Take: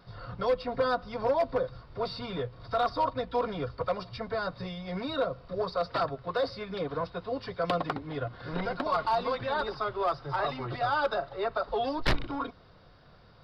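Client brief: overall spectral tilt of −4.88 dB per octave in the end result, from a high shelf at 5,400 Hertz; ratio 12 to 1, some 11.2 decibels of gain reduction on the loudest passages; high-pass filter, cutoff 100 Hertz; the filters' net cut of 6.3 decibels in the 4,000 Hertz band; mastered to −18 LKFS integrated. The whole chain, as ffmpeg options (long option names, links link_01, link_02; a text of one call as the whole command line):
ffmpeg -i in.wav -af "highpass=100,equalizer=frequency=4000:width_type=o:gain=-5,highshelf=frequency=5400:gain=-6.5,acompressor=threshold=-34dB:ratio=12,volume=21.5dB" out.wav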